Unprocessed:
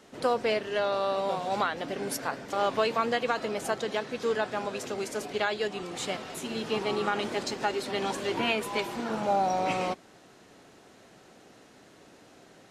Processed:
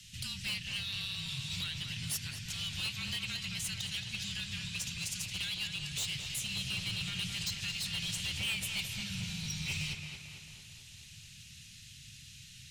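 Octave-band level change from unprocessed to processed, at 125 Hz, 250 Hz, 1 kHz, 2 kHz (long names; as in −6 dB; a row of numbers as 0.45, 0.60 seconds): +3.5, −11.0, −27.0, −5.0 decibels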